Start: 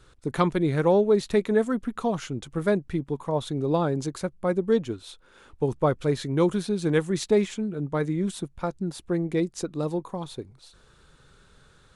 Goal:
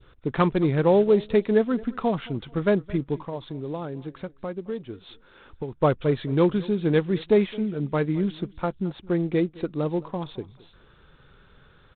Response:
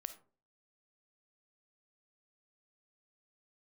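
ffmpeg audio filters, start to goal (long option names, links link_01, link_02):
-filter_complex "[0:a]asplit=3[link_01][link_02][link_03];[link_01]afade=type=out:start_time=3.23:duration=0.02[link_04];[link_02]acompressor=threshold=-36dB:ratio=2.5,afade=type=in:start_time=3.23:duration=0.02,afade=type=out:start_time=5.8:duration=0.02[link_05];[link_03]afade=type=in:start_time=5.8:duration=0.02[link_06];[link_04][link_05][link_06]amix=inputs=3:normalize=0,adynamicequalizer=threshold=0.01:dfrequency=1400:dqfactor=0.91:tfrequency=1400:tqfactor=0.91:attack=5:release=100:ratio=0.375:range=2:mode=cutabove:tftype=bell,aecho=1:1:218|436:0.0891|0.0241,volume=2dB" -ar 8000 -c:a adpcm_ima_wav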